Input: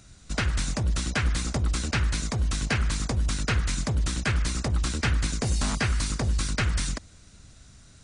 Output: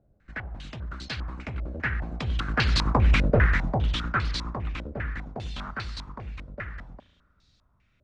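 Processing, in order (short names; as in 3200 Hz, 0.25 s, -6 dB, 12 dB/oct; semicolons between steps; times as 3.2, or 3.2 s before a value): Doppler pass-by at 3.17, 17 m/s, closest 5.5 m; spring tank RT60 1 s, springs 35 ms, chirp 75 ms, DRR 15 dB; stepped low-pass 5 Hz 580–4300 Hz; gain +6.5 dB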